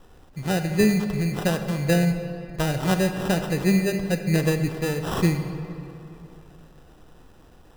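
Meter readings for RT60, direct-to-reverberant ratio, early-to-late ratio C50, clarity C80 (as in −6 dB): 2.9 s, 7.0 dB, 8.0 dB, 9.0 dB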